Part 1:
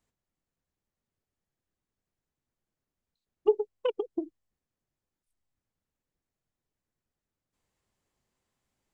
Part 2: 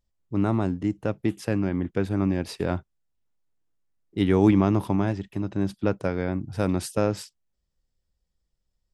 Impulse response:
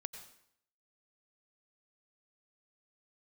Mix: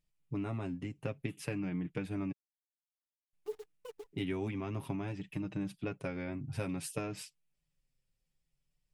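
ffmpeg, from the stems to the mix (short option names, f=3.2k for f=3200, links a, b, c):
-filter_complex "[0:a]acrusher=bits=7:dc=4:mix=0:aa=0.000001,volume=-14.5dB[a];[1:a]equalizer=f=160:t=o:w=0.67:g=8,equalizer=f=2.5k:t=o:w=0.67:g=11,equalizer=f=10k:t=o:w=0.67:g=8,acompressor=threshold=-29dB:ratio=3,volume=-3dB,asplit=3[b][c][d];[b]atrim=end=2.32,asetpts=PTS-STARTPTS,afade=t=out:st=2.316:d=0.004:c=hsin[e];[c]atrim=start=2.32:end=3.33,asetpts=PTS-STARTPTS,volume=0[f];[d]atrim=start=3.33,asetpts=PTS-STARTPTS,afade=t=in:d=0.004:c=hsin[g];[e][f][g]concat=n=3:v=0:a=1,asplit=2[h][i];[i]apad=whole_len=394048[j];[a][j]sidechaincompress=threshold=-35dB:ratio=8:attack=16:release=390[k];[k][h]amix=inputs=2:normalize=0,flanger=delay=6.5:depth=1.2:regen=6:speed=0.55:shape=sinusoidal"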